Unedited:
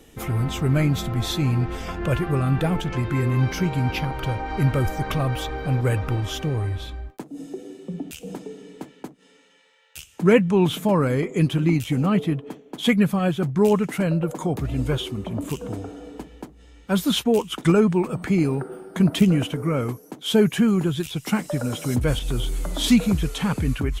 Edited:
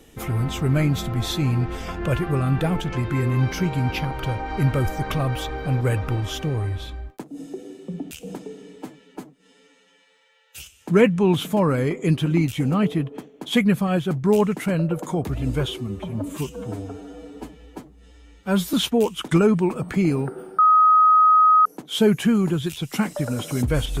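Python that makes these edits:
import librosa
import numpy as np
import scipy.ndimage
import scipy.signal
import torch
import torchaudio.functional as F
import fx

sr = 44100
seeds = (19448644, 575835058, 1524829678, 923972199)

y = fx.edit(x, sr, fx.stretch_span(start_s=8.76, length_s=1.36, factor=1.5),
    fx.stretch_span(start_s=15.1, length_s=1.97, factor=1.5),
    fx.bleep(start_s=18.92, length_s=1.07, hz=1260.0, db=-11.0), tone=tone)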